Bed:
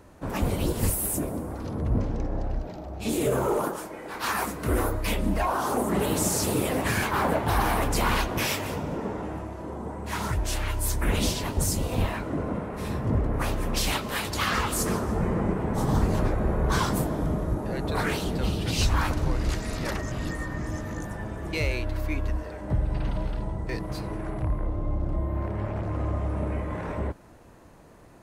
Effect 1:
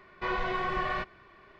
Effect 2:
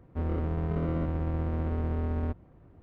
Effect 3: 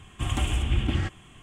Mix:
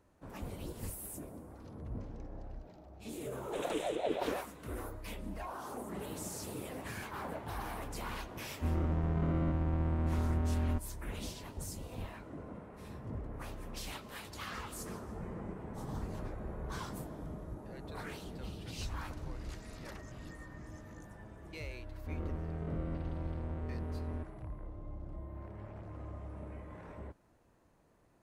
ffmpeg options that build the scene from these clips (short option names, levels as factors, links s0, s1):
-filter_complex "[2:a]asplit=2[s0][s1];[0:a]volume=0.141[s2];[3:a]aeval=exprs='val(0)*sin(2*PI*520*n/s+520*0.3/5.7*sin(2*PI*5.7*n/s))':c=same[s3];[s0]equalizer=f=460:w=6.1:g=-11.5[s4];[s1]bandreject=f=1000:w=18[s5];[s3]atrim=end=1.42,asetpts=PTS-STARTPTS,volume=0.398,afade=t=in:d=0.004:c=hsin,afade=t=out:st=1.416:d=0.004:c=hsin,adelay=146853S[s6];[s4]atrim=end=2.82,asetpts=PTS-STARTPTS,volume=0.794,afade=t=in:d=0.004:c=hsin,afade=t=out:st=2.816:d=0.004:c=hsin,adelay=8460[s7];[s5]atrim=end=2.82,asetpts=PTS-STARTPTS,volume=0.335,afade=t=in:d=0.004:c=hsin,afade=t=out:st=2.816:d=0.004:c=hsin,adelay=21910[s8];[s2][s6][s7][s8]amix=inputs=4:normalize=0"